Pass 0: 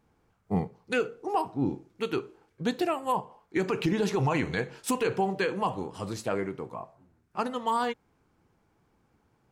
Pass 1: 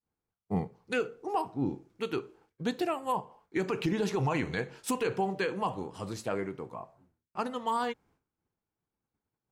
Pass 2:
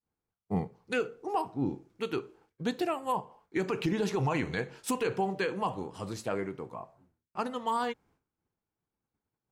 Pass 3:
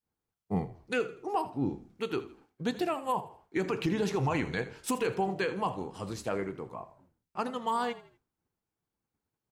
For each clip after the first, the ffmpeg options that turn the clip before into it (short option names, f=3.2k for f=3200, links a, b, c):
-af "agate=range=-33dB:threshold=-56dB:ratio=3:detection=peak,volume=-3dB"
-af anull
-filter_complex "[0:a]asplit=4[a][b][c][d];[b]adelay=81,afreqshift=-38,volume=-16dB[e];[c]adelay=162,afreqshift=-76,volume=-25.1dB[f];[d]adelay=243,afreqshift=-114,volume=-34.2dB[g];[a][e][f][g]amix=inputs=4:normalize=0"